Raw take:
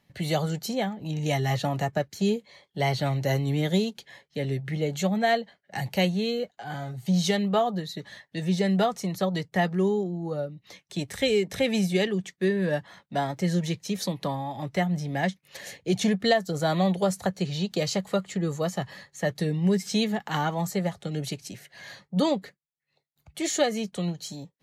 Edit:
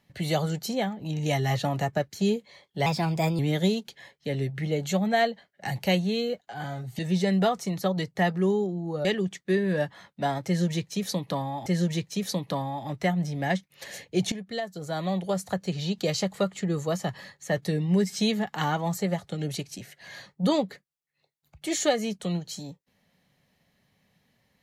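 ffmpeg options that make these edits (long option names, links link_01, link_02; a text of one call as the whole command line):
ffmpeg -i in.wav -filter_complex "[0:a]asplit=7[link_01][link_02][link_03][link_04][link_05][link_06][link_07];[link_01]atrim=end=2.864[link_08];[link_02]atrim=start=2.86:end=3.49,asetpts=PTS-STARTPTS,asetrate=52479,aresample=44100,atrim=end_sample=23347,asetpts=PTS-STARTPTS[link_09];[link_03]atrim=start=3.486:end=7.092[link_10];[link_04]atrim=start=8.358:end=10.422[link_11];[link_05]atrim=start=11.978:end=14.592[link_12];[link_06]atrim=start=13.388:end=16.05,asetpts=PTS-STARTPTS,afade=type=out:start_time=2.658:duration=0.004:curve=hsin:silence=0.177828[link_13];[link_07]atrim=start=16.05,asetpts=PTS-STARTPTS,afade=type=in:duration=1.66:silence=0.177828[link_14];[link_08][link_09]acrossfade=duration=0.004:curve1=hsin:curve2=hsin[link_15];[link_15][link_10]acrossfade=duration=0.004:curve1=hsin:curve2=hsin[link_16];[link_16][link_11]acrossfade=duration=0.004:curve1=hsin:curve2=hsin[link_17];[link_17][link_12]acrossfade=duration=0.004:curve1=hsin:curve2=hsin[link_18];[link_13][link_14]concat=n=2:v=0:a=1[link_19];[link_18][link_19]acrossfade=duration=0.004:curve1=hsin:curve2=hsin" out.wav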